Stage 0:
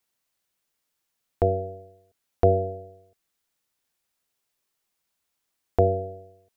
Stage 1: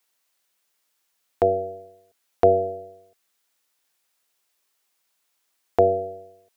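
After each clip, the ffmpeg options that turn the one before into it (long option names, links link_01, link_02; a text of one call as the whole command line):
ffmpeg -i in.wav -af "highpass=frequency=510:poles=1,volume=6.5dB" out.wav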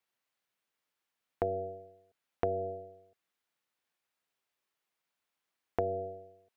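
ffmpeg -i in.wav -af "bass=frequency=250:gain=5,treble=frequency=4000:gain=-10,acompressor=threshold=-20dB:ratio=6,volume=-8dB" out.wav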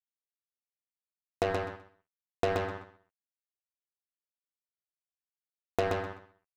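ffmpeg -i in.wav -filter_complex "[0:a]acrusher=bits=4:mix=0:aa=0.5,asplit=2[link_01][link_02];[link_02]aecho=0:1:127|254|381:0.668|0.127|0.0241[link_03];[link_01][link_03]amix=inputs=2:normalize=0,volume=2.5dB" out.wav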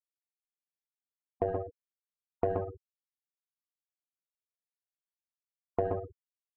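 ffmpeg -i in.wav -af "afftfilt=real='re*gte(hypot(re,im),0.0562)':imag='im*gte(hypot(re,im),0.0562)':win_size=1024:overlap=0.75,adynamicsmooth=sensitivity=0.5:basefreq=1100" out.wav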